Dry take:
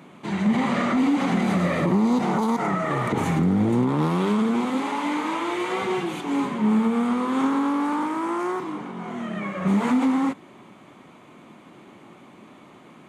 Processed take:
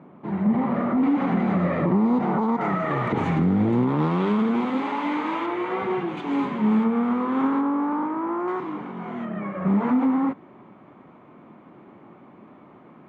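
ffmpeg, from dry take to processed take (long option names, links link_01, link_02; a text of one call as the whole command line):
ffmpeg -i in.wav -af "asetnsamples=nb_out_samples=441:pad=0,asendcmd='1.03 lowpass f 1700;2.61 lowpass f 3000;5.46 lowpass f 1900;6.17 lowpass f 3200;6.84 lowpass f 2000;7.61 lowpass f 1300;8.48 lowpass f 2500;9.25 lowpass f 1500',lowpass=1100" out.wav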